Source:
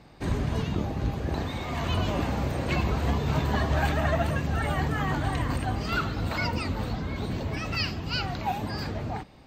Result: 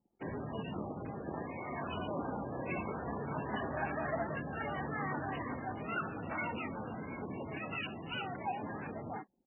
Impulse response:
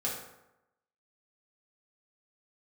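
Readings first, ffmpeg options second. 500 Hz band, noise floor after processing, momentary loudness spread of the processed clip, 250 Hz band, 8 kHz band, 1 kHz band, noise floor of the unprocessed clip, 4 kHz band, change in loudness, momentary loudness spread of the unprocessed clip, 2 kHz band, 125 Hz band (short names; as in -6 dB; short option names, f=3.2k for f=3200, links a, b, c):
-7.5 dB, -47 dBFS, 5 LU, -9.5 dB, under -35 dB, -7.5 dB, -37 dBFS, -15.0 dB, -10.5 dB, 6 LU, -8.5 dB, -16.5 dB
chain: -af "aresample=16000,asoftclip=type=tanh:threshold=-21.5dB,aresample=44100,highpass=190,lowpass=5k,anlmdn=0.1,volume=-5.5dB" -ar 16000 -c:a libmp3lame -b:a 8k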